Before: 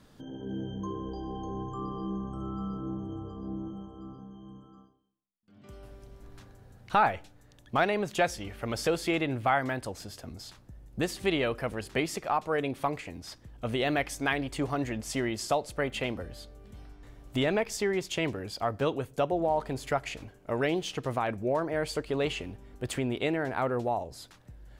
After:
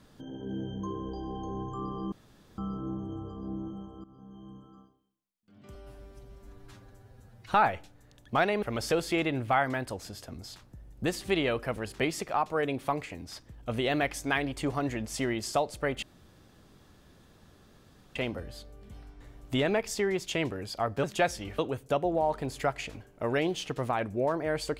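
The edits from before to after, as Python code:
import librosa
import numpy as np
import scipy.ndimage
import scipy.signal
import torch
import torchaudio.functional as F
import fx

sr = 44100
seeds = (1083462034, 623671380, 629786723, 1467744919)

y = fx.edit(x, sr, fx.room_tone_fill(start_s=2.12, length_s=0.46),
    fx.fade_in_from(start_s=4.04, length_s=0.35, floor_db=-17.0),
    fx.stretch_span(start_s=5.75, length_s=1.19, factor=1.5),
    fx.move(start_s=8.03, length_s=0.55, to_s=18.86),
    fx.insert_room_tone(at_s=15.98, length_s=2.13), tone=tone)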